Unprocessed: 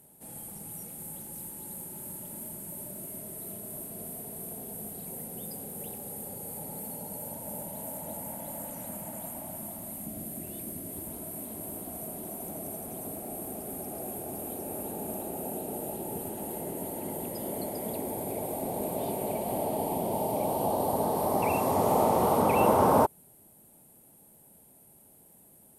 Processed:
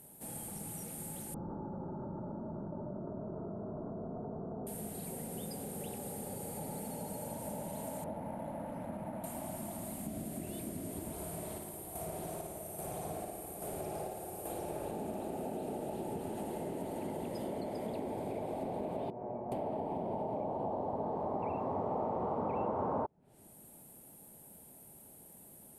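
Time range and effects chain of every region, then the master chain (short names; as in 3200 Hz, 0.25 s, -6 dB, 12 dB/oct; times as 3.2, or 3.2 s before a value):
1.34–4.67 steep low-pass 1400 Hz 72 dB/oct + fast leveller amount 100%
8.04–9.24 LPF 1800 Hz + careless resampling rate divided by 4×, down none, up hold
11.12–14.92 bell 250 Hz -14.5 dB 0.41 oct + chopper 1.2 Hz, depth 60%, duty 55% + flutter echo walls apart 9.6 m, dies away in 0.83 s
19.1–19.52 LPF 1400 Hz 24 dB/oct + resonator 120 Hz, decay 0.3 s, mix 80%
whole clip: treble ducked by the level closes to 1300 Hz, closed at -25.5 dBFS; compressor 3:1, threshold -39 dBFS; gain +2 dB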